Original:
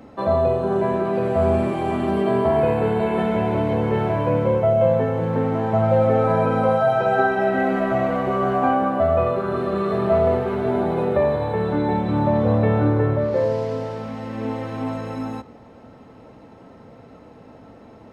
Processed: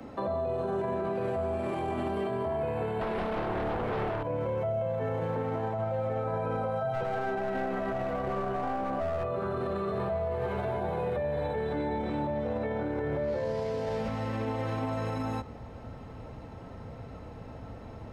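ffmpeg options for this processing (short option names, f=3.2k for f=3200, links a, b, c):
-filter_complex "[0:a]asettb=1/sr,asplit=3[a][b][c];[a]atrim=end=3.014[d];[b]atrim=start=3.01:end=4.23,asetpts=PTS-STARTPTS,afade=t=in:d=0.004:c=qsin,afade=t=out:st=1.216:d=0.004:c=qsin,aeval=exprs='0.376*sin(PI/2*3.55*val(0)/0.376)':c=same[e];[c]atrim=start=4.226[f];[d][e]acrossfade=d=0.004:c1=hsin:c2=qsin[g];[g][f]acrossfade=d=0.004:c1=qsin:c2=hsin,asettb=1/sr,asplit=3[h][i][j];[h]atrim=end=6.934[k];[i]atrim=start=6.93:end=9.24,asetpts=PTS-STARTPTS,afade=t=in:d=0.004:c=qsin,afade=t=out:st=2.306:d=0.004:c=qsin,aeval=exprs='clip(val(0),-1,0.106)':c=same[l];[j]atrim=start=9.236[m];[k][l]acrossfade=d=0.004:c1=hsin:c2=qsin[n];[n][m]acrossfade=d=0.004:c1=qsin:c2=hsin,asettb=1/sr,asplit=3[o][p][q];[o]atrim=end=9.984[r];[p]atrim=start=9.98:end=14.08,asetpts=PTS-STARTPTS,afade=t=in:d=0.004:c=qsin,afade=t=out:st=4.096:d=0.004:c=qsin,asplit=2[s][t];[t]adelay=14,volume=-2.5dB[u];[s][u]amix=inputs=2:normalize=0,atrim=end_sample=180810[v];[q]atrim=start=14.076[w];[r][v]acrossfade=d=0.004:c1=hsin:c2=qsin[x];[x][w]acrossfade=d=0.004:c1=qsin:c2=hsin,asubboost=boost=4.5:cutoff=110,acrossover=split=140|290|870[y][z][aa][ab];[y]acompressor=threshold=-39dB:ratio=4[ac];[z]acompressor=threshold=-38dB:ratio=4[ad];[aa]acompressor=threshold=-27dB:ratio=4[ae];[ab]acompressor=threshold=-37dB:ratio=4[af];[ac][ad][ae][af]amix=inputs=4:normalize=0,alimiter=limit=-24dB:level=0:latency=1:release=30"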